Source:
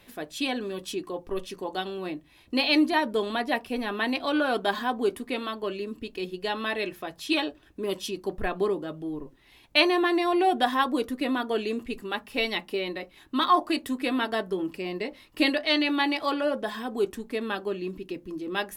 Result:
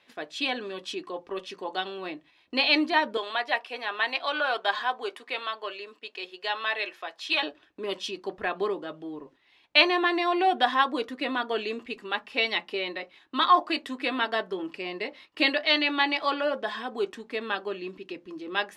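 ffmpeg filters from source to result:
ffmpeg -i in.wav -filter_complex "[0:a]asettb=1/sr,asplit=3[link_01][link_02][link_03];[link_01]atrim=end=3.174[link_04];[link_02]atrim=start=3.17:end=7.43,asetpts=PTS-STARTPTS,afade=type=in:duration=0.004:curve=qsin,afade=type=out:start_time=4.256:duration=0.004:curve=qsin,highpass=550[link_05];[link_03]atrim=start=7.426[link_06];[link_04][link_05]acrossfade=duration=0.004:curve1=hsin:curve2=qsin[link_07];[link_07][link_06]acrossfade=duration=0.004:curve1=qsin:curve2=hsin,lowpass=4600,agate=range=-7dB:threshold=-50dB:ratio=16:detection=peak,highpass=frequency=730:poles=1,volume=3.5dB" out.wav

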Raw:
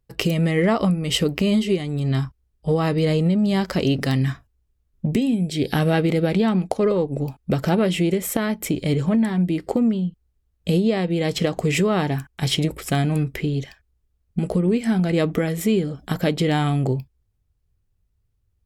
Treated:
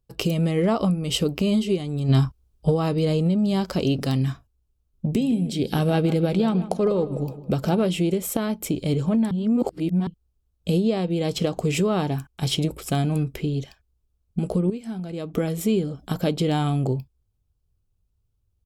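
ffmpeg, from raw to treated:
ffmpeg -i in.wav -filter_complex "[0:a]asplit=3[link_01][link_02][link_03];[link_01]afade=type=out:start_time=2.08:duration=0.02[link_04];[link_02]acontrast=66,afade=type=in:start_time=2.08:duration=0.02,afade=type=out:start_time=2.69:duration=0.02[link_05];[link_03]afade=type=in:start_time=2.69:duration=0.02[link_06];[link_04][link_05][link_06]amix=inputs=3:normalize=0,asplit=3[link_07][link_08][link_09];[link_07]afade=type=out:start_time=5.14:duration=0.02[link_10];[link_08]asplit=2[link_11][link_12];[link_12]adelay=156,lowpass=frequency=2400:poles=1,volume=-13.5dB,asplit=2[link_13][link_14];[link_14]adelay=156,lowpass=frequency=2400:poles=1,volume=0.47,asplit=2[link_15][link_16];[link_16]adelay=156,lowpass=frequency=2400:poles=1,volume=0.47,asplit=2[link_17][link_18];[link_18]adelay=156,lowpass=frequency=2400:poles=1,volume=0.47,asplit=2[link_19][link_20];[link_20]adelay=156,lowpass=frequency=2400:poles=1,volume=0.47[link_21];[link_11][link_13][link_15][link_17][link_19][link_21]amix=inputs=6:normalize=0,afade=type=in:start_time=5.14:duration=0.02,afade=type=out:start_time=7.83:duration=0.02[link_22];[link_09]afade=type=in:start_time=7.83:duration=0.02[link_23];[link_10][link_22][link_23]amix=inputs=3:normalize=0,asplit=5[link_24][link_25][link_26][link_27][link_28];[link_24]atrim=end=9.312[link_29];[link_25]atrim=start=9.308:end=10.072,asetpts=PTS-STARTPTS,areverse[link_30];[link_26]atrim=start=10.068:end=14.702[link_31];[link_27]atrim=start=14.698:end=15.342,asetpts=PTS-STARTPTS,volume=-9.5dB[link_32];[link_28]atrim=start=15.338[link_33];[link_29][link_30]acrossfade=duration=0.004:curve1=hsin:curve2=hsin[link_34];[link_34][link_31]acrossfade=duration=0.004:curve1=hsin:curve2=hsin[link_35];[link_35][link_32]acrossfade=duration=0.004:curve1=hsin:curve2=hsin[link_36];[link_36][link_33]acrossfade=duration=0.004:curve1=hsin:curve2=hsin,equalizer=frequency=1900:width_type=o:width=0.46:gain=-11,volume=-2dB" out.wav

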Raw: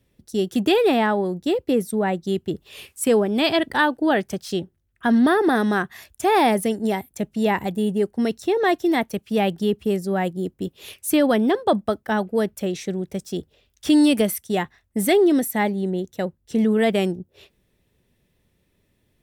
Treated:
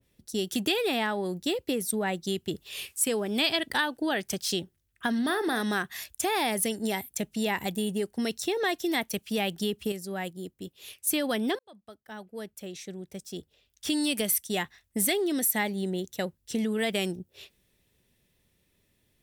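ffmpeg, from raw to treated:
ffmpeg -i in.wav -filter_complex "[0:a]asettb=1/sr,asplit=3[link_01][link_02][link_03];[link_01]atrim=end=5.154[link_04];[link_02]atrim=start=5.15:end=5.63,asetpts=PTS-STARTPTS,afade=type=in:duration=0.004:curve=qsin,afade=type=out:start_time=0.476:duration=0.004:curve=qsin,asplit=2[link_05][link_06];[link_06]adelay=39,volume=-13dB[link_07];[link_05][link_07]amix=inputs=2:normalize=0,atrim=end_sample=21168[link_08];[link_03]atrim=start=5.626[link_09];[link_04][link_08]acrossfade=duration=0.004:curve1=hsin:curve2=qsin[link_10];[link_10][link_09]acrossfade=duration=0.004:curve1=qsin:curve2=hsin,asplit=4[link_11][link_12][link_13][link_14];[link_11]atrim=end=9.922[link_15];[link_12]atrim=start=9.918:end=11.072,asetpts=PTS-STARTPTS,volume=-7dB[link_16];[link_13]atrim=start=11.068:end=11.59,asetpts=PTS-STARTPTS,afade=type=out:start_time=0.518:duration=0.004:curve=hsin[link_17];[link_14]atrim=start=11.59,asetpts=PTS-STARTPTS,afade=type=in:duration=3.47[link_18];[link_15][link_16]acrossfade=duration=0.004:curve1=hsin:curve2=hsin[link_19];[link_17][link_18]concat=n=2:v=0:a=1[link_20];[link_19][link_20]acrossfade=duration=0.004:curve1=hsin:curve2=hsin,highshelf=frequency=2200:gain=8,acompressor=threshold=-20dB:ratio=6,adynamicequalizer=threshold=0.0126:dfrequency=1700:dqfactor=0.7:tfrequency=1700:tqfactor=0.7:attack=5:release=100:ratio=0.375:range=2.5:mode=boostabove:tftype=highshelf,volume=-5.5dB" out.wav

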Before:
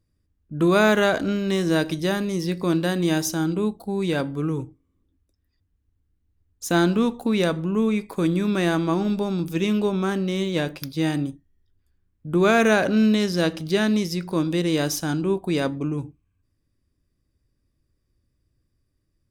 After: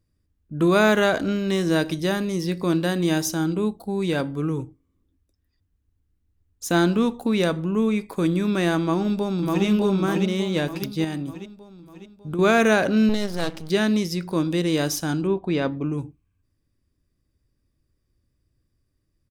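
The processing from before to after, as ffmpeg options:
ffmpeg -i in.wav -filter_complex "[0:a]asplit=2[link_01][link_02];[link_02]afade=type=in:start_time=8.82:duration=0.01,afade=type=out:start_time=9.65:duration=0.01,aecho=0:1:600|1200|1800|2400|3000|3600|4200:0.749894|0.374947|0.187474|0.0937368|0.0468684|0.0234342|0.0117171[link_03];[link_01][link_03]amix=inputs=2:normalize=0,asettb=1/sr,asplit=3[link_04][link_05][link_06];[link_04]atrim=end=11.044[link_07];[link_05]atrim=start=11.04:end=12.39,asetpts=PTS-STARTPTS,afade=type=in:duration=0.004:curve=qsin,afade=type=out:start_time=1.346:duration=0.004:curve=qsin,acompressor=threshold=-25dB:ratio=6:attack=3.2:release=140:knee=1:detection=peak[link_08];[link_06]atrim=start=12.386[link_09];[link_07][link_08]acrossfade=duration=0.004:curve1=hsin:curve2=qsin[link_10];[link_10][link_09]acrossfade=duration=0.004:curve1=qsin:curve2=hsin,asettb=1/sr,asplit=3[link_11][link_12][link_13];[link_11]atrim=end=13.094[link_14];[link_12]atrim=start=13.09:end=13.7,asetpts=PTS-STARTPTS,afade=type=in:duration=0.004:curve=qsin,afade=type=out:start_time=0.606:duration=0.004:curve=qsin,aeval=exprs='max(val(0),0)':channel_layout=same[link_15];[link_13]atrim=start=13.696[link_16];[link_14][link_15]acrossfade=duration=0.004:curve1=hsin:curve2=qsin[link_17];[link_17][link_16]acrossfade=duration=0.004:curve1=qsin:curve2=hsin,asettb=1/sr,asplit=3[link_18][link_19][link_20];[link_18]atrim=end=15.274[link_21];[link_19]atrim=start=15.27:end=15.9,asetpts=PTS-STARTPTS,afade=type=in:duration=0.004:curve=qsin,afade=type=out:start_time=0.626:duration=0.004:curve=qsin,lowpass=3700[link_22];[link_20]atrim=start=15.896[link_23];[link_21][link_22]acrossfade=duration=0.004:curve1=hsin:curve2=qsin[link_24];[link_24][link_23]acrossfade=duration=0.004:curve1=qsin:curve2=hsin" out.wav

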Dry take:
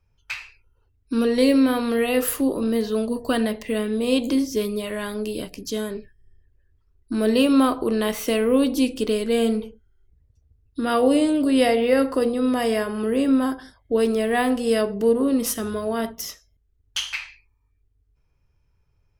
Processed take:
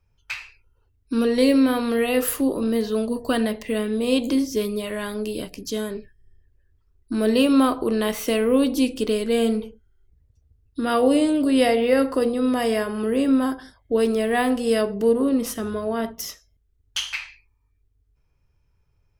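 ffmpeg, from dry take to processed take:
ffmpeg -i in.wav -filter_complex "[0:a]asettb=1/sr,asplit=3[link_01][link_02][link_03];[link_01]atrim=end=15.294[link_04];[link_02]atrim=start=15.29:end=16.19,asetpts=PTS-STARTPTS,afade=type=in:duration=0.004:curve=qsin,afade=type=out:start_time=0.896:duration=0.004:curve=qsin,highshelf=frequency=3800:gain=-7[link_05];[link_03]atrim=start=16.186[link_06];[link_04][link_05]acrossfade=duration=0.004:curve1=hsin:curve2=qsin[link_07];[link_07][link_06]acrossfade=duration=0.004:curve1=qsin:curve2=hsin" out.wav

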